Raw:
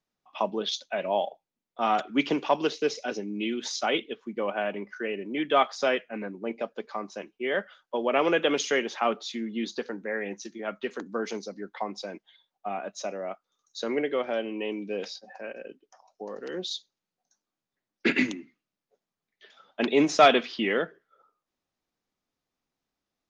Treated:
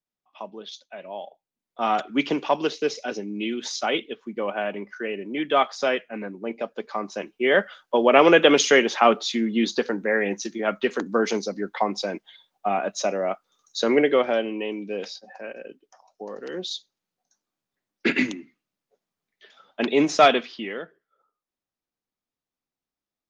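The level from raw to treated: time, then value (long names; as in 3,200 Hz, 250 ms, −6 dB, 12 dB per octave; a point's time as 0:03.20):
0:01.18 −9 dB
0:01.82 +2 dB
0:06.55 +2 dB
0:07.52 +9 dB
0:14.13 +9 dB
0:14.69 +2 dB
0:20.25 +2 dB
0:20.75 −7 dB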